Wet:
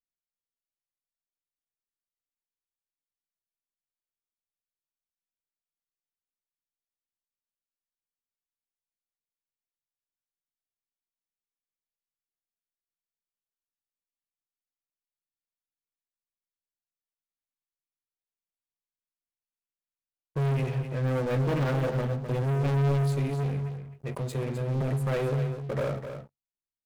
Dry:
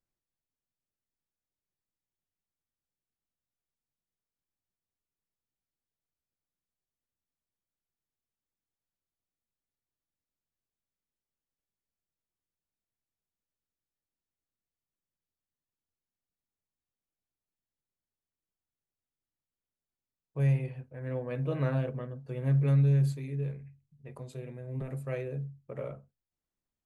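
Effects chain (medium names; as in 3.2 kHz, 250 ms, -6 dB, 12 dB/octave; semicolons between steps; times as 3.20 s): one-sided wavefolder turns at -24.5 dBFS; waveshaping leveller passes 5; on a send: delay 257 ms -9 dB; on the sum: trim -5.5 dB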